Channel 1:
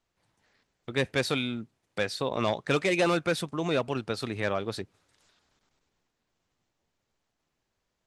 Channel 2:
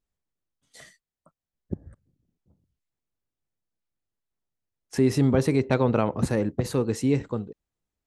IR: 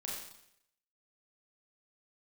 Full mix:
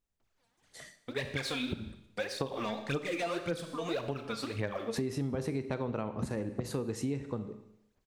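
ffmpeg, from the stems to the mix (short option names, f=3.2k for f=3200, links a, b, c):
-filter_complex "[0:a]acontrast=82,aphaser=in_gain=1:out_gain=1:delay=4.4:decay=0.76:speed=1.8:type=sinusoidal,adelay=200,volume=-15dB,asplit=2[a][b];[b]volume=-6dB[c];[1:a]volume=-3dB,asplit=2[d][e];[e]volume=-9dB[f];[2:a]atrim=start_sample=2205[g];[c][f]amix=inputs=2:normalize=0[h];[h][g]afir=irnorm=-1:irlink=0[i];[a][d][i]amix=inputs=3:normalize=0,acompressor=threshold=-31dB:ratio=6"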